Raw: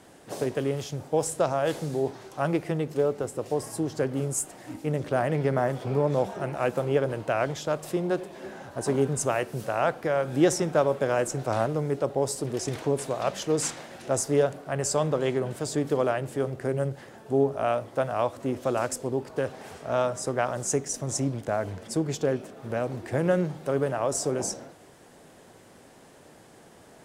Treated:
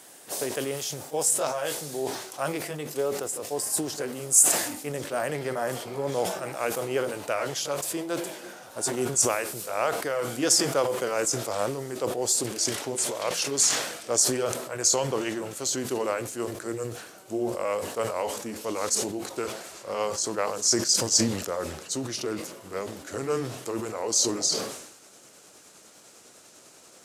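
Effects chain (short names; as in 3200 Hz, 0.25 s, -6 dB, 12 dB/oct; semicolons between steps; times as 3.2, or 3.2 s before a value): gliding pitch shift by -4 st starting unshifted; RIAA curve recording; sustainer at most 62 dB/s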